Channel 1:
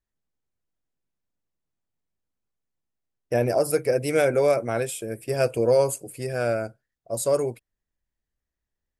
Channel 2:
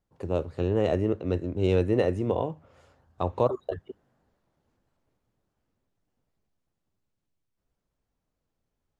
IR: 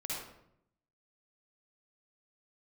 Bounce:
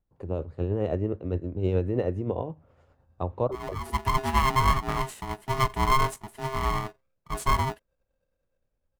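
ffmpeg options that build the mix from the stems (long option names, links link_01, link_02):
-filter_complex "[0:a]dynaudnorm=framelen=220:gausssize=7:maxgain=13dB,aeval=exprs='val(0)*sgn(sin(2*PI*530*n/s))':channel_layout=same,adelay=200,volume=-7.5dB[link_01];[1:a]lowshelf=frequency=78:gain=10,volume=-2dB,asplit=2[link_02][link_03];[link_03]apad=whole_len=405657[link_04];[link_01][link_04]sidechaincompress=threshold=-42dB:ratio=16:attack=12:release=199[link_05];[link_05][link_02]amix=inputs=2:normalize=0,highshelf=frequency=2600:gain=-11.5,tremolo=f=9.6:d=0.38"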